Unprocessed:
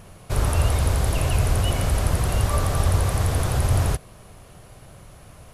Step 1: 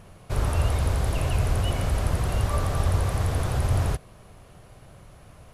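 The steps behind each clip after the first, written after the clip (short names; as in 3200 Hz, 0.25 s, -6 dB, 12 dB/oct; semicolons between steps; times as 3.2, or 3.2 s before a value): high shelf 5300 Hz -6 dB; gain -3 dB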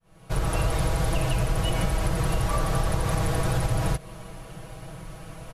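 opening faded in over 0.70 s; comb 6.2 ms, depth 85%; compressor, threshold -27 dBFS, peak gain reduction 9.5 dB; gain +6.5 dB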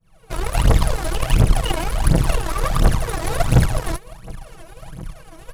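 hard clip -19.5 dBFS, distortion -16 dB; phaser 1.4 Hz, delay 3.2 ms, feedback 79%; added harmonics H 2 -7 dB, 7 -27 dB, 8 -19 dB, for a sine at -5.5 dBFS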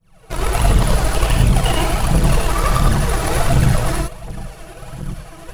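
in parallel at -0.5 dB: negative-ratio compressor -17 dBFS, ratio -0.5; on the sum: non-linear reverb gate 0.13 s rising, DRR -0.5 dB; gain -4.5 dB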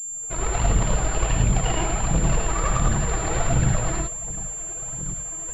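pulse-width modulation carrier 7300 Hz; gain -6.5 dB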